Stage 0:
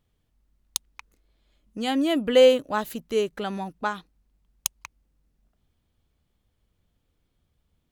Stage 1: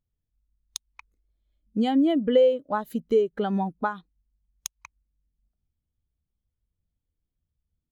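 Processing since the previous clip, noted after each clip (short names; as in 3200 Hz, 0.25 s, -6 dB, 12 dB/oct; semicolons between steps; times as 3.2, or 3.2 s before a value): notch 2700 Hz, Q 14; compressor 6:1, threshold -30 dBFS, peak gain reduction 17 dB; spectral expander 1.5:1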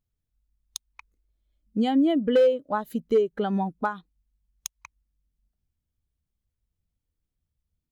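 hard clip -14 dBFS, distortion -23 dB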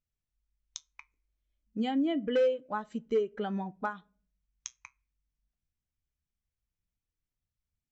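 flange 0.32 Hz, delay 4.8 ms, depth 3.3 ms, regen -72%; rippled Chebyshev low-pass 7800 Hz, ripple 6 dB; on a send at -22 dB: reverb RT60 0.50 s, pre-delay 5 ms; on the sum: gain +2 dB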